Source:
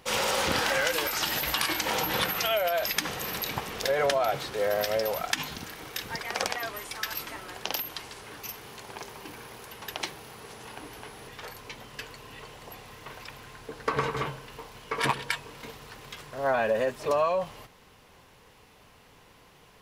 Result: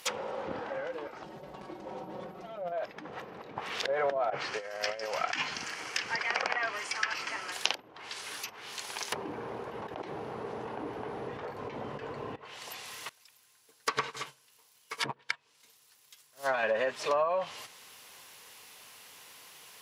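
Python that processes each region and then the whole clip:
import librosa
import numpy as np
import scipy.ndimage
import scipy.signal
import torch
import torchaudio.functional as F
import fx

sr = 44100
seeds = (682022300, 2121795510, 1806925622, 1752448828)

y = fx.chain(x, sr, fx.lower_of_two(delay_ms=5.4),
    fx.peak_eq(hz=1900.0, db=-9.0, octaves=2.1),
    fx.env_flatten(amount_pct=50), at=(1.23, 2.72))
y = fx.chain(y, sr, fx.lowpass(hz=5000.0, slope=12),
    fx.peak_eq(hz=3700.0, db=-15.0, octaves=0.31),
    fx.over_compress(threshold_db=-31.0, ratio=-0.5), at=(4.3, 7.52))
y = fx.chain(y, sr, fx.high_shelf(hz=6500.0, db=7.0),
    fx.env_flatten(amount_pct=100), at=(9.12, 12.36))
y = fx.chain(y, sr, fx.bass_treble(bass_db=3, treble_db=7),
    fx.upward_expand(threshold_db=-39.0, expansion=2.5), at=(13.09, 16.63))
y = scipy.signal.sosfilt(scipy.signal.butter(2, 60.0, 'highpass', fs=sr, output='sos'), y)
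y = fx.tilt_eq(y, sr, slope=4.0)
y = fx.env_lowpass_down(y, sr, base_hz=550.0, full_db=-20.0)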